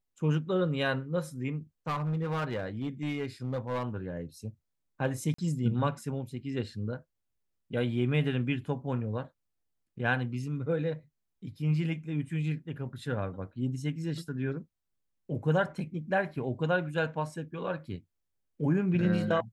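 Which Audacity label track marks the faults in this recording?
1.870000	3.830000	clipping −27.5 dBFS
5.340000	5.380000	drop-out 44 ms

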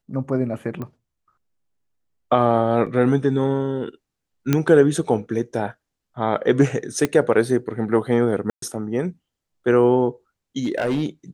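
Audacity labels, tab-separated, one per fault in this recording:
0.820000	0.820000	click −20 dBFS
2.860000	2.870000	drop-out 6.3 ms
4.530000	4.530000	click −5 dBFS
7.050000	7.050000	click −7 dBFS
8.500000	8.620000	drop-out 123 ms
10.590000	11.030000	clipping −17 dBFS

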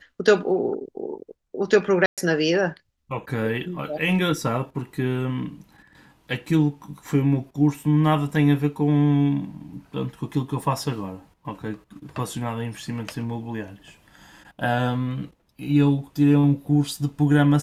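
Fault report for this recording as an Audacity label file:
2.060000	2.180000	drop-out 117 ms

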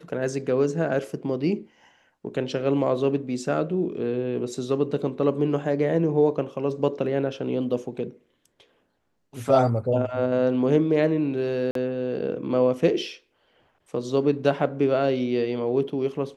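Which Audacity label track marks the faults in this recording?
11.710000	11.750000	drop-out 43 ms

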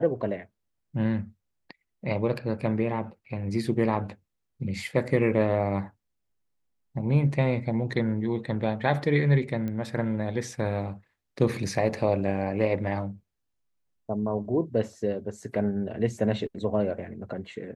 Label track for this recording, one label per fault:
9.680000	9.680000	click −22 dBFS

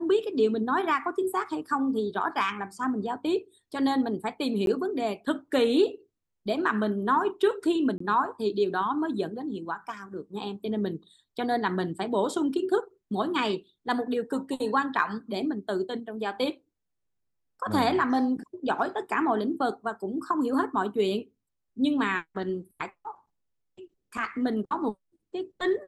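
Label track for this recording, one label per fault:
4.660000	4.670000	drop-out 12 ms
7.980000	8.000000	drop-out 24 ms

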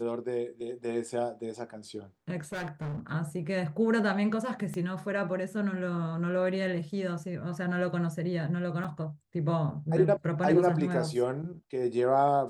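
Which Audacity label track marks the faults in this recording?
2.520000	3.000000	clipping −32.5 dBFS
4.740000	4.740000	click −25 dBFS
8.840000	8.850000	drop-out 5.6 ms

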